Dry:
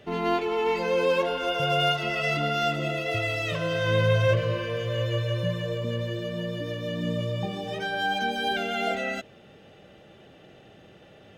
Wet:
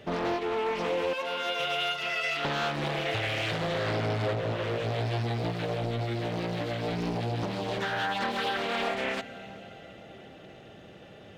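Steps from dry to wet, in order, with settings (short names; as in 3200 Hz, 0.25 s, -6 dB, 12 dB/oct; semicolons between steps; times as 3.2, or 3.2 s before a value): 1.13–2.45 HPF 1100 Hz 6 dB/oct; reverb RT60 5.1 s, pre-delay 0.105 s, DRR 17 dB; compressor 4:1, threshold -29 dBFS, peak gain reduction 10.5 dB; Doppler distortion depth 0.93 ms; gain +2 dB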